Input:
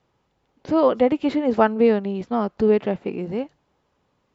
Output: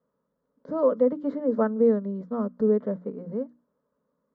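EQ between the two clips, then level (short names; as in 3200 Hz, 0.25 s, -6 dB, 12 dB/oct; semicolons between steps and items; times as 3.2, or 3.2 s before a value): band-pass 340 Hz, Q 0.61; notches 60/120/180/240/300 Hz; fixed phaser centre 520 Hz, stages 8; -1.5 dB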